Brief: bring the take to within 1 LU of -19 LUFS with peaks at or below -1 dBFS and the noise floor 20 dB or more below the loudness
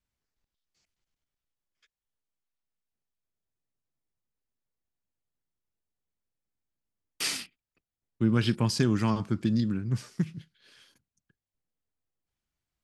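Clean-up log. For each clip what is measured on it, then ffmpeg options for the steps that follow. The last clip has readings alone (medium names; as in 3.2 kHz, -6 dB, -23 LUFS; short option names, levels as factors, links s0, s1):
loudness -28.5 LUFS; peak level -12.5 dBFS; loudness target -19.0 LUFS
-> -af "volume=2.99"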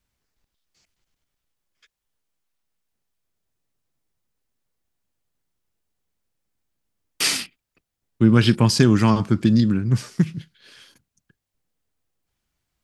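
loudness -19.0 LUFS; peak level -3.0 dBFS; noise floor -82 dBFS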